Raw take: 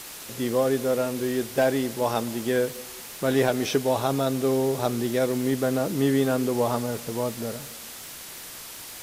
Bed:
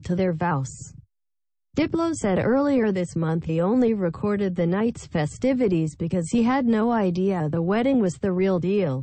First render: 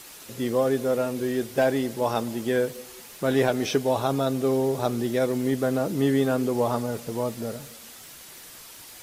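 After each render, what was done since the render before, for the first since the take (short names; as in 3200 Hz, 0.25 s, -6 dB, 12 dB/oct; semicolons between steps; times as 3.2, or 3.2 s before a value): denoiser 6 dB, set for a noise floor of -41 dBFS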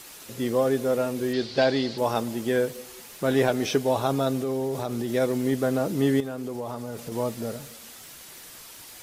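1.33–1.98 synth low-pass 4400 Hz, resonance Q 6.4; 4.39–5.1 compressor, threshold -24 dBFS; 6.2–7.12 compressor 4:1, threshold -30 dBFS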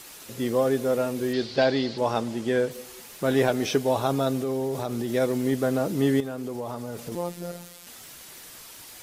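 1.56–2.71 Bessel low-pass 7300 Hz; 7.15–7.87 robotiser 174 Hz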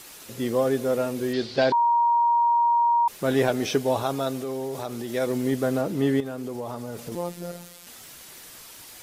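1.72–3.08 bleep 943 Hz -17 dBFS; 4.03–5.27 low shelf 380 Hz -6 dB; 5.81–6.26 tone controls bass -1 dB, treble -5 dB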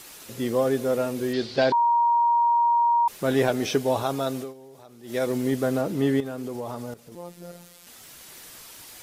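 4.4–5.16 dip -16 dB, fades 0.14 s; 6.94–8.41 fade in linear, from -14 dB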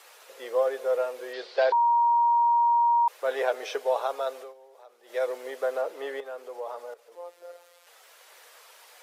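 Chebyshev high-pass 480 Hz, order 4; high shelf 3400 Hz -12 dB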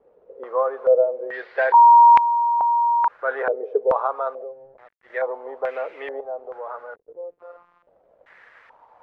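sample gate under -52 dBFS; stepped low-pass 2.3 Hz 460–2300 Hz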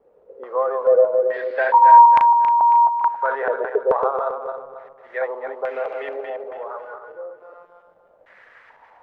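regenerating reverse delay 0.137 s, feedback 57%, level -5 dB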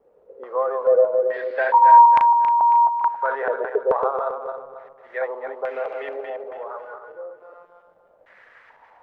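gain -1.5 dB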